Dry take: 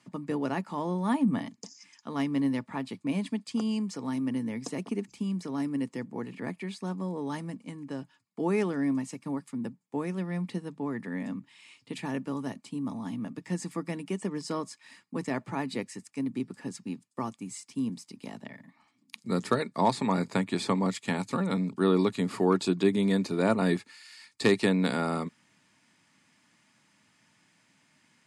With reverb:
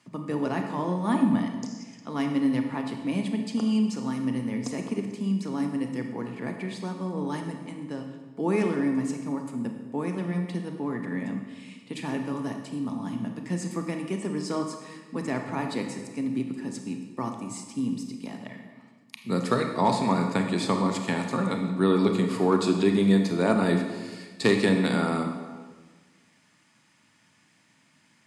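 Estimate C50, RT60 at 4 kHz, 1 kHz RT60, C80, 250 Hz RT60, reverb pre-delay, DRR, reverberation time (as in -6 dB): 5.5 dB, 1.1 s, 1.4 s, 7.5 dB, 1.7 s, 28 ms, 4.0 dB, 1.4 s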